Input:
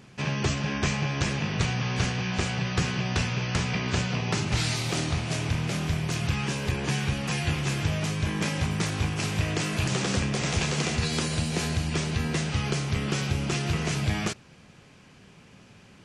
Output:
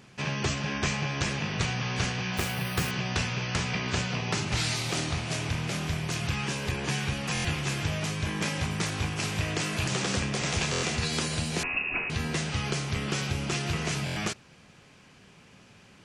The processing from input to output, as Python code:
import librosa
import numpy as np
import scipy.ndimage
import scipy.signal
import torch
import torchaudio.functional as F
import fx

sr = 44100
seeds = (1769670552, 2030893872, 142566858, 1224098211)

y = fx.low_shelf(x, sr, hz=470.0, db=-4.0)
y = fx.resample_bad(y, sr, factor=3, down='none', up='hold', at=(2.37, 2.91))
y = fx.freq_invert(y, sr, carrier_hz=2700, at=(11.63, 12.1))
y = fx.buffer_glitch(y, sr, at_s=(7.33, 10.71, 14.05), block=1024, repeats=4)